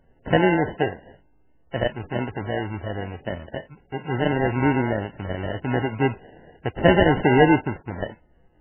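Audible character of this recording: aliases and images of a low sample rate 1200 Hz, jitter 0%; MP3

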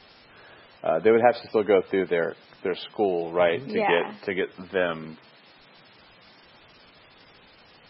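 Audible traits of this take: a quantiser's noise floor 8-bit, dither triangular; MP3

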